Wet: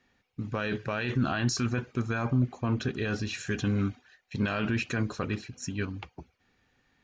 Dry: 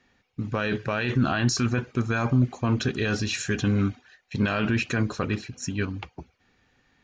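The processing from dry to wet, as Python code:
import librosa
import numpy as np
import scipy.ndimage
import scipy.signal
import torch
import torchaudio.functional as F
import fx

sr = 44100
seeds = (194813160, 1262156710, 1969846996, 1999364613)

y = fx.high_shelf(x, sr, hz=4000.0, db=-7.0, at=(2.13, 3.47))
y = y * 10.0 ** (-4.5 / 20.0)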